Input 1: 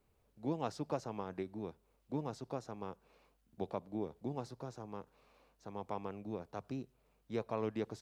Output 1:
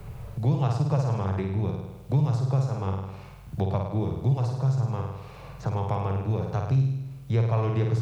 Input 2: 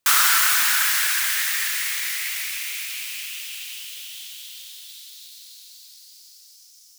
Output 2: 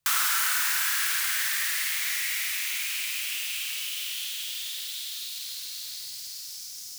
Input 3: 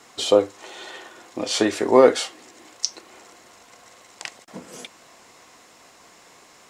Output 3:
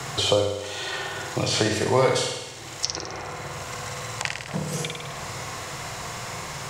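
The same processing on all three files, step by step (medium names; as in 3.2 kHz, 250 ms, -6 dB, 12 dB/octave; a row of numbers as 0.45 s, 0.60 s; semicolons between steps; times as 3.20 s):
resonant low shelf 180 Hz +10.5 dB, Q 3; flutter echo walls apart 8.9 m, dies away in 0.75 s; three bands compressed up and down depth 70%; normalise loudness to -27 LUFS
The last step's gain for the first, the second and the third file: +8.0 dB, -6.5 dB, +2.0 dB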